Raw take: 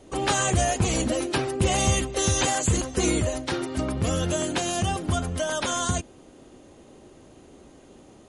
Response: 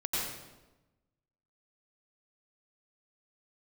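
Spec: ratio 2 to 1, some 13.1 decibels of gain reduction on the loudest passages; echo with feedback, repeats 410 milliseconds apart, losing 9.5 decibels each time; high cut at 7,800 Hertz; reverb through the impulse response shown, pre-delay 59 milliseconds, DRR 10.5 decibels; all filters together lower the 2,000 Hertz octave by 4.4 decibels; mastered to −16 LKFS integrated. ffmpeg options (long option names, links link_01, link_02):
-filter_complex "[0:a]lowpass=7800,equalizer=frequency=2000:width_type=o:gain=-6,acompressor=threshold=-43dB:ratio=2,aecho=1:1:410|820|1230|1640:0.335|0.111|0.0365|0.012,asplit=2[link_01][link_02];[1:a]atrim=start_sample=2205,adelay=59[link_03];[link_02][link_03]afir=irnorm=-1:irlink=0,volume=-17dB[link_04];[link_01][link_04]amix=inputs=2:normalize=0,volume=20.5dB"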